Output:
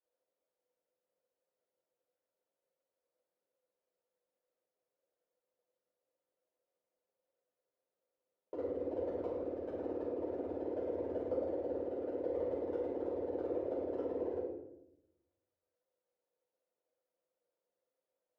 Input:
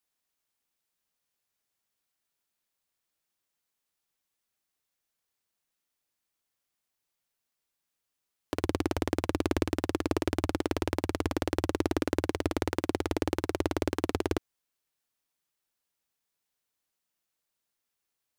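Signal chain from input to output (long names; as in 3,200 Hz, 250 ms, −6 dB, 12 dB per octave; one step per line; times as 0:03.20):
reverb reduction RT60 0.55 s
compressor whose output falls as the input rises −32 dBFS, ratio −0.5
hard clipping −28 dBFS, distortion −5 dB
resonant band-pass 510 Hz, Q 6.1
rectangular room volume 260 cubic metres, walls mixed, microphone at 4.9 metres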